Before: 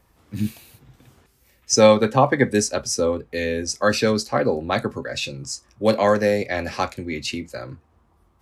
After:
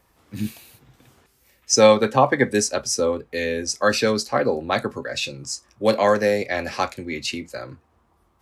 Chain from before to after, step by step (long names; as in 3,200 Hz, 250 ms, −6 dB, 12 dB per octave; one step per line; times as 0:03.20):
low-shelf EQ 230 Hz −6.5 dB
level +1 dB